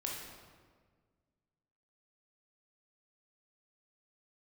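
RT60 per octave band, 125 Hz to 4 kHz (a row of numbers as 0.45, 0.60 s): 2.2, 2.0, 1.8, 1.5, 1.3, 1.1 s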